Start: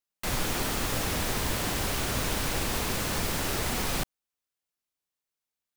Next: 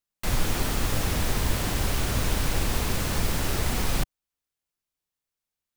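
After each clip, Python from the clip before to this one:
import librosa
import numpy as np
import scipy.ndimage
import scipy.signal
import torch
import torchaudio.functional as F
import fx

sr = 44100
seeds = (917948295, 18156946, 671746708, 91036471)

y = fx.low_shelf(x, sr, hz=130.0, db=9.5)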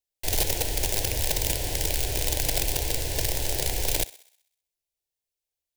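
y = (np.mod(10.0 ** (17.5 / 20.0) * x + 1.0, 2.0) - 1.0) / 10.0 ** (17.5 / 20.0)
y = fx.fixed_phaser(y, sr, hz=510.0, stages=4)
y = fx.echo_thinned(y, sr, ms=64, feedback_pct=55, hz=430.0, wet_db=-18.0)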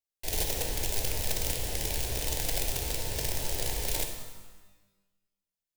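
y = fx.rev_shimmer(x, sr, seeds[0], rt60_s=1.1, semitones=12, shimmer_db=-8, drr_db=4.0)
y = y * 10.0 ** (-6.5 / 20.0)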